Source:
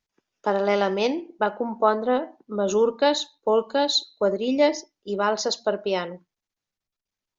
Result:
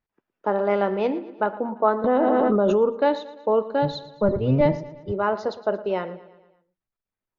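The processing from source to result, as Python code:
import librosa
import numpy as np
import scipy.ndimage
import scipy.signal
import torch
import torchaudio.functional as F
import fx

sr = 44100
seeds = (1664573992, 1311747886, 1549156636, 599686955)

y = fx.octave_divider(x, sr, octaves=1, level_db=4.0, at=(3.82, 5.12))
y = scipy.signal.sosfilt(scipy.signal.butter(2, 1800.0, 'lowpass', fs=sr, output='sos'), y)
y = fx.echo_feedback(y, sr, ms=114, feedback_pct=54, wet_db=-17.0)
y = fx.env_flatten(y, sr, amount_pct=100, at=(2.04, 2.76))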